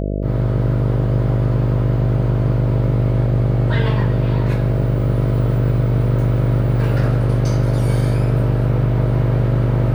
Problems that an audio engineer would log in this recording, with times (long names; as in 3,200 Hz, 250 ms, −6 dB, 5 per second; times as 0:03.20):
mains buzz 50 Hz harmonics 13 −21 dBFS